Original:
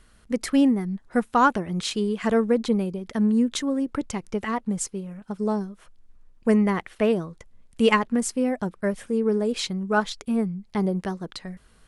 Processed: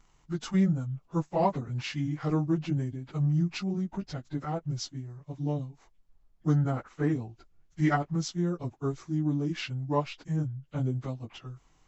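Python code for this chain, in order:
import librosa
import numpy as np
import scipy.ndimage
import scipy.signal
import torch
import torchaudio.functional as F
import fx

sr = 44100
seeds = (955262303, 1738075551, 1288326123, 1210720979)

y = fx.pitch_bins(x, sr, semitones=-6.5)
y = y * 10.0 ** (-5.0 / 20.0)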